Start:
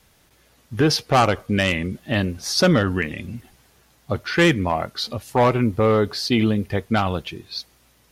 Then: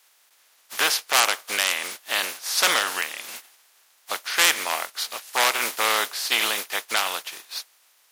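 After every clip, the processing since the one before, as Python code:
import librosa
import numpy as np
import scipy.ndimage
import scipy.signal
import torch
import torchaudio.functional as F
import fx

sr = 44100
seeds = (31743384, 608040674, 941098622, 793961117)

y = fx.spec_flatten(x, sr, power=0.42)
y = scipy.signal.sosfilt(scipy.signal.butter(2, 780.0, 'highpass', fs=sr, output='sos'), y)
y = y * 10.0 ** (-1.5 / 20.0)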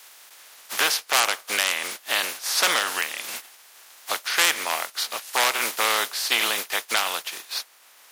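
y = fx.band_squash(x, sr, depth_pct=40)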